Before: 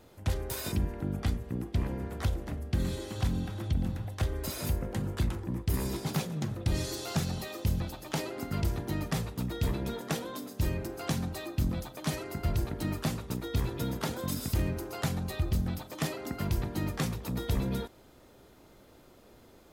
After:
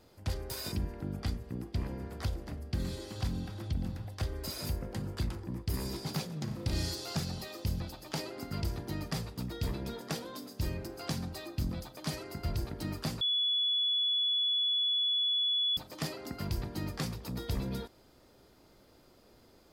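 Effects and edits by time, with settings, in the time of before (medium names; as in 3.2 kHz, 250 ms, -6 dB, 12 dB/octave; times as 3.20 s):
6.44–6.94 s: flutter echo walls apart 6 m, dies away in 0.53 s
13.21–15.77 s: bleep 3.41 kHz -23 dBFS
whole clip: peaking EQ 4.8 kHz +9.5 dB 0.28 oct; trim -4.5 dB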